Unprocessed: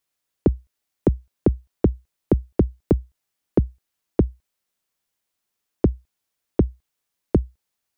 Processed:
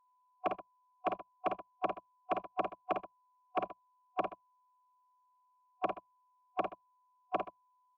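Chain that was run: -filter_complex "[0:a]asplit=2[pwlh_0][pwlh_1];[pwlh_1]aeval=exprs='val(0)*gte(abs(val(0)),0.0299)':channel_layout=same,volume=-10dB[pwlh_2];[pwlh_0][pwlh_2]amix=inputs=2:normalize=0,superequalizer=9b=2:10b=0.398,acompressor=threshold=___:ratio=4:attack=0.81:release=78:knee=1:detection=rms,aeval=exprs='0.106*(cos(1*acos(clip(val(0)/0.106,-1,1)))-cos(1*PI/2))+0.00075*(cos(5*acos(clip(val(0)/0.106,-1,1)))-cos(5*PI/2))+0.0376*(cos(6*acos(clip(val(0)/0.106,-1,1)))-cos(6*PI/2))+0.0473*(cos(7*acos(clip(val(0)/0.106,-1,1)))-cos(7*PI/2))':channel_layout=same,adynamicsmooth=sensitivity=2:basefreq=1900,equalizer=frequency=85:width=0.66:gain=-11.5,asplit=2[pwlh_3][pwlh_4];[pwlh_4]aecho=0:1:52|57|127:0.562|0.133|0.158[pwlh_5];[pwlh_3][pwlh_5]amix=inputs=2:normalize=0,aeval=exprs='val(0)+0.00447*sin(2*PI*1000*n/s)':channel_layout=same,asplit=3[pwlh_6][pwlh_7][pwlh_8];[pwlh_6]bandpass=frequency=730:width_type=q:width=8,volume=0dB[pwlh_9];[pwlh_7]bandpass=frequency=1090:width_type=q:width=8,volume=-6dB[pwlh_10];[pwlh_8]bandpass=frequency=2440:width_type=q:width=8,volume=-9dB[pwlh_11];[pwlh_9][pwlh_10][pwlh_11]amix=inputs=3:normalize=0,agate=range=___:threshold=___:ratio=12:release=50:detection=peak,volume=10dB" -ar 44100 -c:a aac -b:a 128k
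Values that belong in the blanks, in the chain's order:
-28dB, -20dB, -59dB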